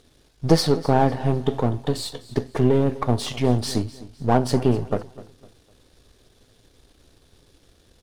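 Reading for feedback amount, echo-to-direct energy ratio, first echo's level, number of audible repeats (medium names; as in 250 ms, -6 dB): 34%, -17.5 dB, -18.0 dB, 2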